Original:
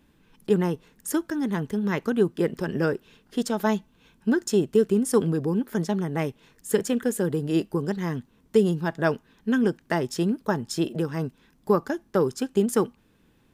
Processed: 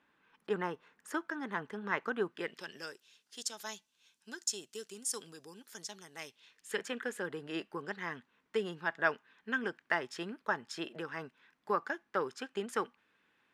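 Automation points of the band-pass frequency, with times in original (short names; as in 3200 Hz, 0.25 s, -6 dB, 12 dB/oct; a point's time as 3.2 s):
band-pass, Q 1.2
2.24 s 1400 Hz
2.85 s 6200 Hz
6.16 s 6200 Hz
6.85 s 1800 Hz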